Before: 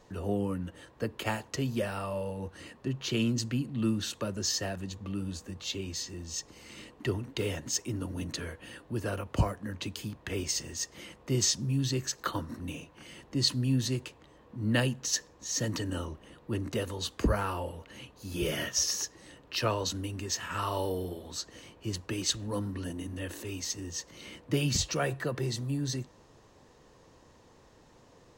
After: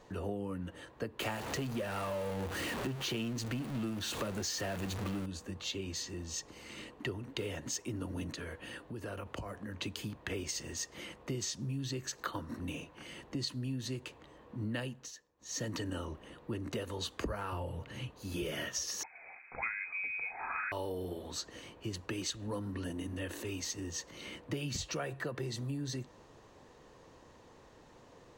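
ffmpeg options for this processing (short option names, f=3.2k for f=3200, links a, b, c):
-filter_complex "[0:a]asettb=1/sr,asplit=3[a][b][c];[a]atrim=end=1.204[d];[b]atrim=start=1.2:end=5.26,asetpts=PTS-STARTPTS,afade=t=in:d=0.004:c=qsin,afade=t=out:st=4.056:d=0.004:c=qsin,aeval=exprs='val(0)+0.5*0.0237*sgn(val(0))':c=same[e];[c]atrim=start=5.256[f];[d][e]acrossfade=d=0.004:c1=hsin:c2=qsin[g];[g][f]acrossfade=d=0.004:c1=qsin:c2=hsin,asettb=1/sr,asplit=3[h][i][j];[h]atrim=end=8.324[k];[i]atrim=start=8.32:end=9.78,asetpts=PTS-STARTPTS,afade=t=in:d=0.004:c=qsin,afade=t=out:st=1.456:d=0.004:c=qsin,acompressor=threshold=-38dB:ratio=6:attack=3.2:release=140:knee=1:detection=peak[l];[j]atrim=start=9.776[m];[k][l]acrossfade=d=0.004:c1=hsin:c2=qsin[n];[n][m]acrossfade=d=0.004:c1=qsin:c2=hsin,asettb=1/sr,asplit=3[o][p][q];[o]atrim=end=17.524[r];[p]atrim=start=17.52:end=18.11,asetpts=PTS-STARTPTS,afade=t=in:d=0.004:c=qsin,afade=t=out:st=0.586:d=0.004:c=qsin,equalizer=f=120:w=1.5:g=14.5[s];[q]atrim=start=18.106[t];[r][s]acrossfade=d=0.004:c1=hsin:c2=qsin[u];[u][t]acrossfade=d=0.004:c1=qsin:c2=hsin,asettb=1/sr,asplit=3[v][w][x];[v]atrim=end=19.034[y];[w]atrim=start=19.03:end=20.72,asetpts=PTS-STARTPTS,afade=t=in:d=0.004:c=qsin,afade=t=out:st=1.686:d=0.004:c=qsin,lowpass=f=2.2k:t=q:w=0.5098,lowpass=f=2.2k:t=q:w=0.6013,lowpass=f=2.2k:t=q:w=0.9,lowpass=f=2.2k:t=q:w=2.563,afreqshift=-2600[z];[x]atrim=start=20.716[aa];[y][z]acrossfade=d=0.004:c1=hsin:c2=qsin[ab];[ab][aa]acrossfade=d=0.004:c1=qsin:c2=hsin,asplit=3[ac][ad][ae];[ac]atrim=end=15.14,asetpts=PTS-STARTPTS,afade=t=out:st=14.83:d=0.31:silence=0.0891251[af];[ad]atrim=start=15.14:end=15.37,asetpts=PTS-STARTPTS,volume=-21dB[ag];[ae]atrim=start=15.37,asetpts=PTS-STARTPTS,afade=t=in:d=0.31:silence=0.0891251[ah];[af][ag][ah]concat=n=3:v=0:a=1,bass=f=250:g=-3,treble=f=4k:g=-4,bandreject=f=5.2k:w=28,acompressor=threshold=-36dB:ratio=6,volume=1.5dB"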